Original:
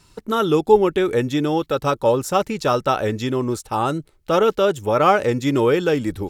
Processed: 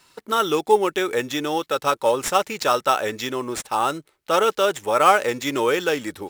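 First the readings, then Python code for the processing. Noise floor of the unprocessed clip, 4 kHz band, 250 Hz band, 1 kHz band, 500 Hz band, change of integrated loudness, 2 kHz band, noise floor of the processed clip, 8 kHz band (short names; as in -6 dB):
-56 dBFS, +3.0 dB, -7.0 dB, +0.5 dB, -3.5 dB, -2.0 dB, +2.5 dB, -65 dBFS, +5.0 dB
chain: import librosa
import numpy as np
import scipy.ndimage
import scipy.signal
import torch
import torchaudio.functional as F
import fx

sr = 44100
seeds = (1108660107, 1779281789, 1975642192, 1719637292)

p1 = fx.highpass(x, sr, hz=1000.0, slope=6)
p2 = fx.dynamic_eq(p1, sr, hz=6600.0, q=0.9, threshold_db=-47.0, ratio=4.0, max_db=5)
p3 = fx.sample_hold(p2, sr, seeds[0], rate_hz=9200.0, jitter_pct=0)
y = p2 + (p3 * librosa.db_to_amplitude(-5.0))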